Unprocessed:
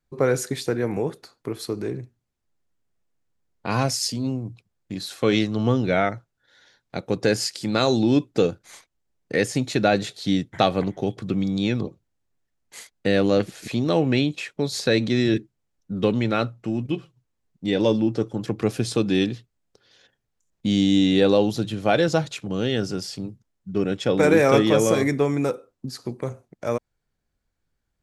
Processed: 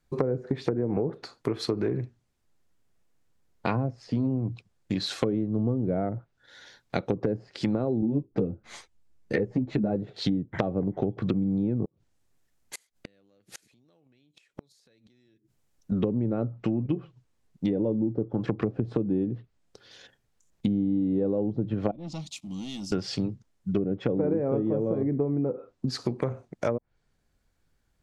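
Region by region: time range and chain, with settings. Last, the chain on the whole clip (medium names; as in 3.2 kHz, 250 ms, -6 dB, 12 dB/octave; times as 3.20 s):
8.01–9.96 s: bass shelf 170 Hz +7 dB + three-phase chorus
11.85–15.92 s: treble shelf 6.7 kHz +6 dB + compression, threshold -35 dBFS + inverted gate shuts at -30 dBFS, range -32 dB
21.91–22.92 s: amplifier tone stack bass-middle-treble 6-0-2 + waveshaping leveller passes 2 + static phaser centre 430 Hz, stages 6
whole clip: low-pass that closes with the level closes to 480 Hz, closed at -19.5 dBFS; compression 10:1, threshold -28 dBFS; trim +5.5 dB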